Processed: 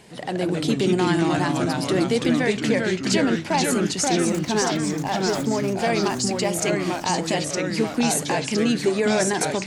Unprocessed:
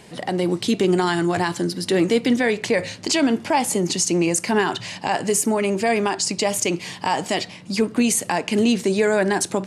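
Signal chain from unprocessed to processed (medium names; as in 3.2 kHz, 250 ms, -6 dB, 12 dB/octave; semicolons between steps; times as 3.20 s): 4.11–5.68 s: median filter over 15 samples; ever faster or slower copies 102 ms, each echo -2 st, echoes 3; trim -3.5 dB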